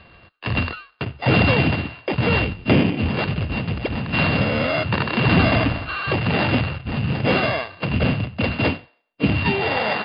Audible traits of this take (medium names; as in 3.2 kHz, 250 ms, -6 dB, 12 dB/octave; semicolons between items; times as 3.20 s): a buzz of ramps at a fixed pitch in blocks of 16 samples; MP3